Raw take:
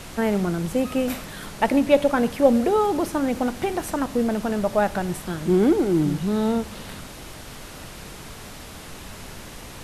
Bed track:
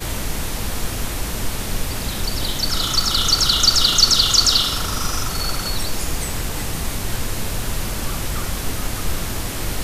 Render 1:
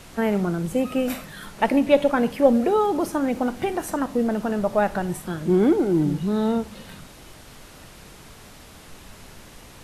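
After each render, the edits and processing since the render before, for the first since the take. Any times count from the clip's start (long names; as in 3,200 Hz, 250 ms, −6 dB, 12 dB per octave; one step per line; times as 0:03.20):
noise reduction from a noise print 6 dB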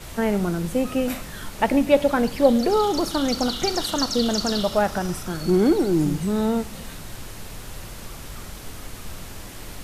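mix in bed track −13.5 dB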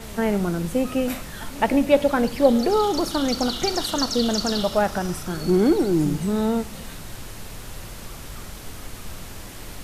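echo ahead of the sound 213 ms −21.5 dB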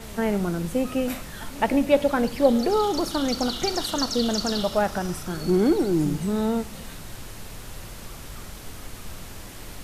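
level −2 dB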